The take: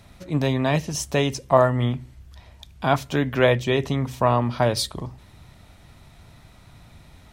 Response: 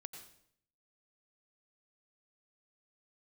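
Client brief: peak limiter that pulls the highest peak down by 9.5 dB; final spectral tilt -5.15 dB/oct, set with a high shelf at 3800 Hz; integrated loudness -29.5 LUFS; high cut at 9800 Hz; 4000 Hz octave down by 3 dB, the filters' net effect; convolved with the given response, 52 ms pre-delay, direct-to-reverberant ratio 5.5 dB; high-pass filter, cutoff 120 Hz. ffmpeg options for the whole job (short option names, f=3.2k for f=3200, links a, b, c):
-filter_complex "[0:a]highpass=120,lowpass=9.8k,highshelf=f=3.8k:g=5.5,equalizer=f=4k:t=o:g=-7.5,alimiter=limit=-12dB:level=0:latency=1,asplit=2[a][b];[1:a]atrim=start_sample=2205,adelay=52[c];[b][c]afir=irnorm=-1:irlink=0,volume=-1dB[d];[a][d]amix=inputs=2:normalize=0,volume=-5dB"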